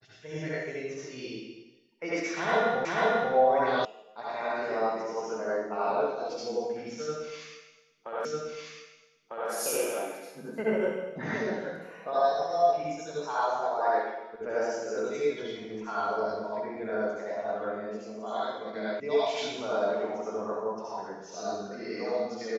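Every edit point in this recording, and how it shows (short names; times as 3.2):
2.85 repeat of the last 0.49 s
3.85 sound cut off
8.25 repeat of the last 1.25 s
19 sound cut off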